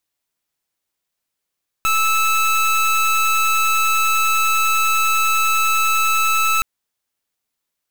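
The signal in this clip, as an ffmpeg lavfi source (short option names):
-f lavfi -i "aevalsrc='0.15*(2*lt(mod(1310*t,1),0.26)-1)':d=4.77:s=44100"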